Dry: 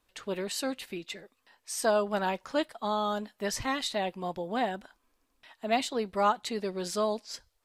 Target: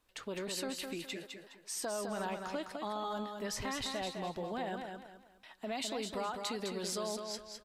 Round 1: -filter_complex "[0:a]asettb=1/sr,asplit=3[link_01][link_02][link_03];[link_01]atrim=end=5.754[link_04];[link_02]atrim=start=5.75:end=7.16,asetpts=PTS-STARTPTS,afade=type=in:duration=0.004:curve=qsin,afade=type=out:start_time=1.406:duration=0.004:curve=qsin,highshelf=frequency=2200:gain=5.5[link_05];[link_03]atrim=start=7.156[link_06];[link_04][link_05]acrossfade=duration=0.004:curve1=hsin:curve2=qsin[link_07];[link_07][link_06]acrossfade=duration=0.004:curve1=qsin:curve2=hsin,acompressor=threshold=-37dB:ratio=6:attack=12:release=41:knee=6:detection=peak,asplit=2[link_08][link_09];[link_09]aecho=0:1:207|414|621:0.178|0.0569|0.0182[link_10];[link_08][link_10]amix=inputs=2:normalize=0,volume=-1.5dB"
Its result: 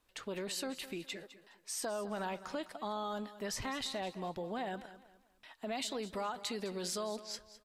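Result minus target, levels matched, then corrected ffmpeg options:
echo-to-direct −9.5 dB
-filter_complex "[0:a]asettb=1/sr,asplit=3[link_01][link_02][link_03];[link_01]atrim=end=5.754[link_04];[link_02]atrim=start=5.75:end=7.16,asetpts=PTS-STARTPTS,afade=type=in:duration=0.004:curve=qsin,afade=type=out:start_time=1.406:duration=0.004:curve=qsin,highshelf=frequency=2200:gain=5.5[link_05];[link_03]atrim=start=7.156[link_06];[link_04][link_05]acrossfade=duration=0.004:curve1=hsin:curve2=qsin[link_07];[link_07][link_06]acrossfade=duration=0.004:curve1=qsin:curve2=hsin,acompressor=threshold=-37dB:ratio=6:attack=12:release=41:knee=6:detection=peak,asplit=2[link_08][link_09];[link_09]aecho=0:1:207|414|621|828:0.531|0.17|0.0544|0.0174[link_10];[link_08][link_10]amix=inputs=2:normalize=0,volume=-1.5dB"

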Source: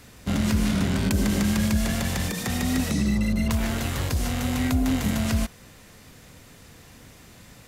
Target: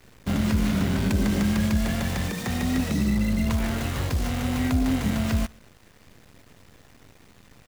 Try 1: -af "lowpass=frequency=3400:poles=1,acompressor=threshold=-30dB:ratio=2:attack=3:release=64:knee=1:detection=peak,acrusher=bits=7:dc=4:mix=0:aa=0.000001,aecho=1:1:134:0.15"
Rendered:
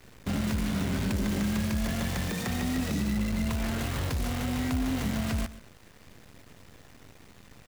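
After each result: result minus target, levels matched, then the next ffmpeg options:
echo-to-direct +12 dB; downward compressor: peak gain reduction +7.5 dB
-af "lowpass=frequency=3400:poles=1,acompressor=threshold=-30dB:ratio=2:attack=3:release=64:knee=1:detection=peak,acrusher=bits=7:dc=4:mix=0:aa=0.000001,aecho=1:1:134:0.0376"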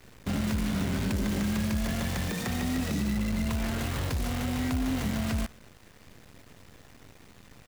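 downward compressor: peak gain reduction +7.5 dB
-af "lowpass=frequency=3400:poles=1,acrusher=bits=7:dc=4:mix=0:aa=0.000001,aecho=1:1:134:0.0376"

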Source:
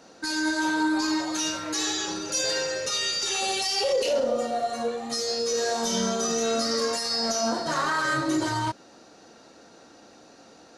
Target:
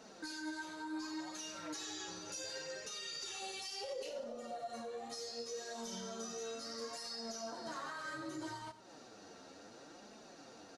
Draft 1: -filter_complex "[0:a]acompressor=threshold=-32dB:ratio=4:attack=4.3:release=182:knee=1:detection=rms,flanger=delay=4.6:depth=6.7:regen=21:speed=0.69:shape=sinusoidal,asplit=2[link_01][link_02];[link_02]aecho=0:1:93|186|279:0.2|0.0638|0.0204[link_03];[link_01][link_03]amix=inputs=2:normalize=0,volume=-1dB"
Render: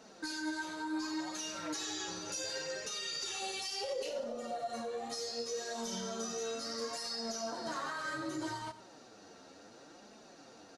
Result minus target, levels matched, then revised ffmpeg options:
downward compressor: peak gain reduction −5 dB
-filter_complex "[0:a]acompressor=threshold=-39dB:ratio=4:attack=4.3:release=182:knee=1:detection=rms,flanger=delay=4.6:depth=6.7:regen=21:speed=0.69:shape=sinusoidal,asplit=2[link_01][link_02];[link_02]aecho=0:1:93|186|279:0.2|0.0638|0.0204[link_03];[link_01][link_03]amix=inputs=2:normalize=0,volume=-1dB"

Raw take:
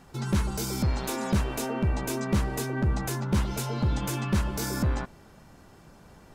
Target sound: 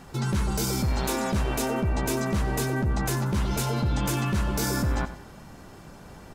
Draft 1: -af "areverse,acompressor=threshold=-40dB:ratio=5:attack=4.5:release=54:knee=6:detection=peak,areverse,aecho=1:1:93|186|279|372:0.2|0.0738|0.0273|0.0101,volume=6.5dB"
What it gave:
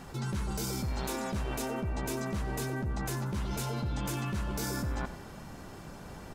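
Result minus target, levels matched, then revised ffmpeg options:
downward compressor: peak gain reduction +8.5 dB
-af "areverse,acompressor=threshold=-29.5dB:ratio=5:attack=4.5:release=54:knee=6:detection=peak,areverse,aecho=1:1:93|186|279|372:0.2|0.0738|0.0273|0.0101,volume=6.5dB"

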